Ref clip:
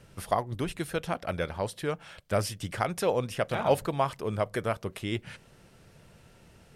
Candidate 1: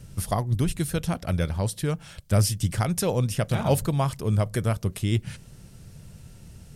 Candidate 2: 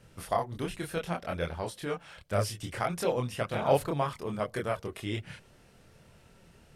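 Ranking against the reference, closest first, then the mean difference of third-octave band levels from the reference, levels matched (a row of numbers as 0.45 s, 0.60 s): 2, 1; 2.0 dB, 4.5 dB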